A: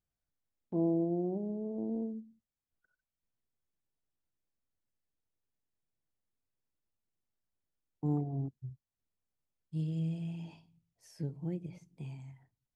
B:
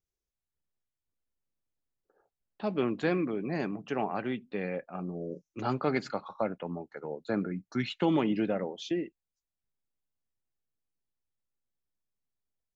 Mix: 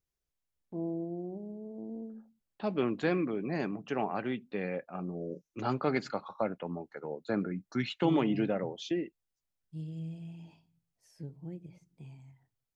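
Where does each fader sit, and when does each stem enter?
-5.5 dB, -1.0 dB; 0.00 s, 0.00 s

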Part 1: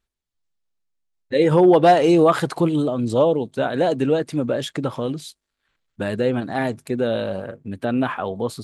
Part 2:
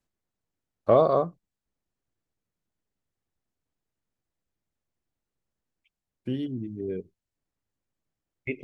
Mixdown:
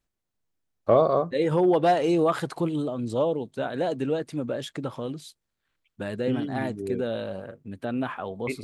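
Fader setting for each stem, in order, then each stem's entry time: -7.5 dB, 0.0 dB; 0.00 s, 0.00 s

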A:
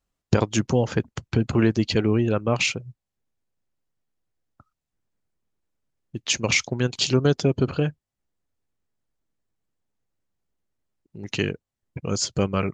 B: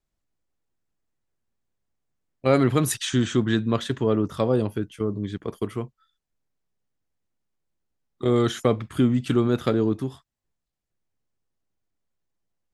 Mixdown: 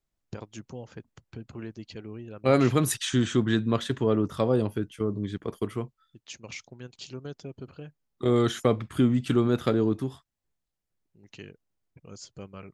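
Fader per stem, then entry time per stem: -19.5 dB, -2.0 dB; 0.00 s, 0.00 s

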